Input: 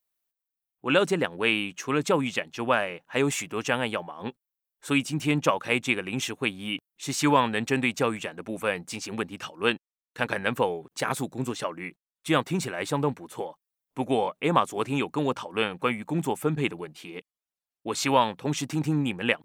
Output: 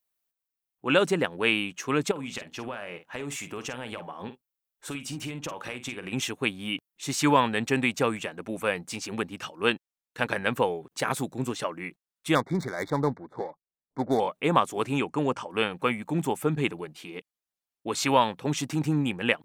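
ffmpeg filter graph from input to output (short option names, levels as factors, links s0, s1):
-filter_complex "[0:a]asettb=1/sr,asplit=3[s0][s1][s2];[s0]atrim=end=2.114[s3];[s1]atrim=start=2.11:end=6.13,asetpts=PTS-STARTPTS,afade=t=in:d=0.004:c=qsin,afade=t=out:st=4.016:d=0.004:c=qsin,acompressor=threshold=0.0282:ratio=10:attack=3.2:release=140:knee=1:detection=peak,asplit=2[s4][s5];[s5]adelay=49,volume=0.282[s6];[s4][s6]amix=inputs=2:normalize=0,atrim=end_sample=177282[s7];[s2]atrim=start=6.126[s8];[s3][s7]acrossfade=d=0.004:c1=hsin:c2=qsin[s9];[s9][s8]acrossfade=d=0.004:c1=qsin:c2=hsin,asettb=1/sr,asplit=3[s10][s11][s12];[s10]atrim=end=12.354[s13];[s11]atrim=start=12.35:end=14.2,asetpts=PTS-STARTPTS,afade=t=in:d=0.004:c=qsin,afade=t=out:st=1.846:d=0.004:c=qsin,adynamicsmooth=sensitivity=7:basefreq=720,asuperstop=centerf=2800:order=20:qfactor=2.4[s14];[s12]atrim=start=14.196[s15];[s13][s14]acrossfade=d=0.004:c1=hsin:c2=qsin[s16];[s16][s15]acrossfade=d=0.004:c1=qsin:c2=hsin,asettb=1/sr,asplit=3[s17][s18][s19];[s17]atrim=end=15.004[s20];[s18]atrim=start=15:end=15.5,asetpts=PTS-STARTPTS,afade=t=in:d=0.004:c=qsin,afade=t=out:st=0.496:d=0.004:c=qsin,lowpass=f=10000:w=0.5412,lowpass=f=10000:w=1.3066,equalizer=f=3800:w=5.1:g=-11.5[s21];[s19]atrim=start=15.496[s22];[s20][s21]acrossfade=d=0.004:c1=hsin:c2=qsin[s23];[s23][s22]acrossfade=d=0.004:c1=qsin:c2=hsin"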